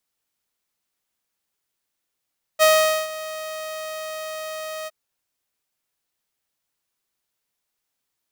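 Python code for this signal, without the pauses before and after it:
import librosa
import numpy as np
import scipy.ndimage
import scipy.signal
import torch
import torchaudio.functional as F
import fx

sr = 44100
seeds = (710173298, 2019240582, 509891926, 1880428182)

y = fx.adsr_tone(sr, wave='saw', hz=628.0, attack_ms=33.0, decay_ms=452.0, sustain_db=-18.0, held_s=2.28, release_ms=32.0, level_db=-9.0)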